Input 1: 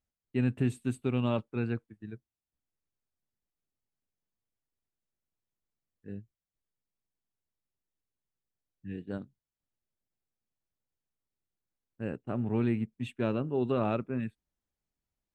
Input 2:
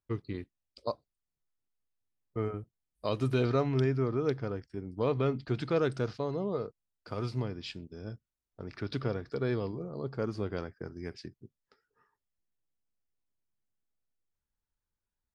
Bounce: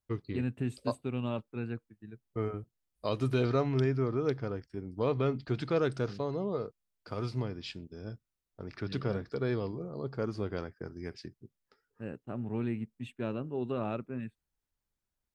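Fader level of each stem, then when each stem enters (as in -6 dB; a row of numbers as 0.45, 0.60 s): -5.0, -0.5 dB; 0.00, 0.00 s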